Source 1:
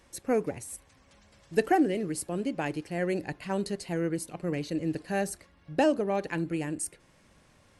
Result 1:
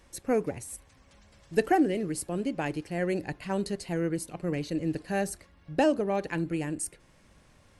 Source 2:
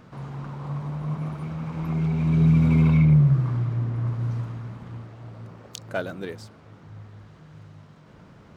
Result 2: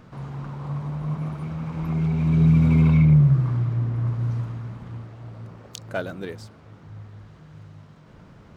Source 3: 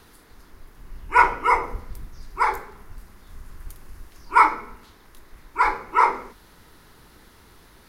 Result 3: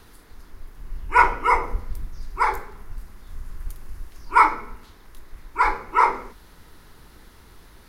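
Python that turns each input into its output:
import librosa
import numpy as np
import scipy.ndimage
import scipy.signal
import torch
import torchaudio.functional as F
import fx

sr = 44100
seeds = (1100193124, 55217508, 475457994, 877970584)

y = fx.low_shelf(x, sr, hz=66.0, db=8.0)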